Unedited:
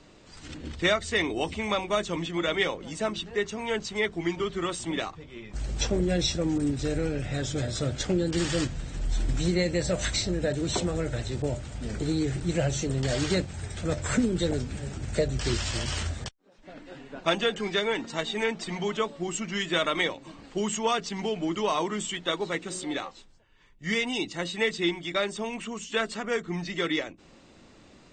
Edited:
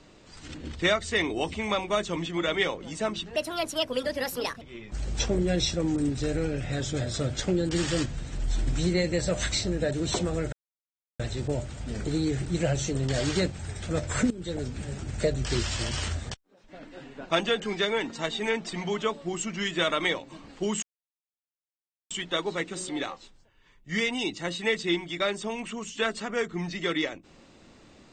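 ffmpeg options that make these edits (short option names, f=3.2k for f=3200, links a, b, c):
-filter_complex "[0:a]asplit=7[a][b][c][d][e][f][g];[a]atrim=end=3.364[h];[b]atrim=start=3.36:end=5.23,asetpts=PTS-STARTPTS,asetrate=65709,aresample=44100[i];[c]atrim=start=5.226:end=11.14,asetpts=PTS-STARTPTS,afade=t=out:st=5.91:d=0.004:c=hsin,apad=pad_dur=0.67[j];[d]atrim=start=11.14:end=14.25,asetpts=PTS-STARTPTS,afade=t=in:d=0.004:c=hsin,afade=t=out:st=3.106:d=0.004:c=hsin:silence=0.149624[k];[e]atrim=start=14.25:end=20.77,asetpts=PTS-STARTPTS,afade=t=in:d=0.52:silence=0.149624,afade=t=out:st=6.516:d=0.004:c=hsin[l];[f]atrim=start=20.77:end=22.05,asetpts=PTS-STARTPTS,volume=0[m];[g]atrim=start=22.05,asetpts=PTS-STARTPTS,afade=t=in:d=0.004:c=hsin[n];[h][i]acrossfade=d=0.004:c1=hsin:c2=hsin[o];[j][k][l][m][n]concat=n=5:v=0:a=1[p];[o][p]acrossfade=d=0.004:c1=hsin:c2=hsin"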